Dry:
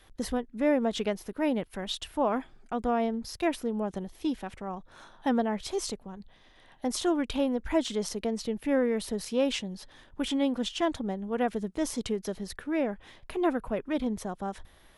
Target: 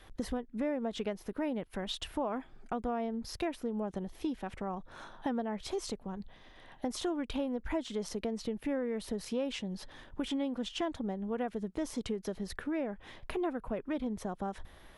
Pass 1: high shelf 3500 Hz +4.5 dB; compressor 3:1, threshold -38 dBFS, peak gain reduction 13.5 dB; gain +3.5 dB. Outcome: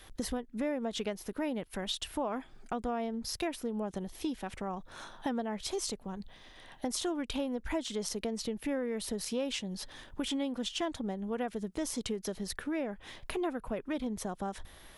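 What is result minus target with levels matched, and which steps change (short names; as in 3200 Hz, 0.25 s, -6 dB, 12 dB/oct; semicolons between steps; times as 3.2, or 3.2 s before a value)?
8000 Hz band +7.0 dB
change: high shelf 3500 Hz -6.5 dB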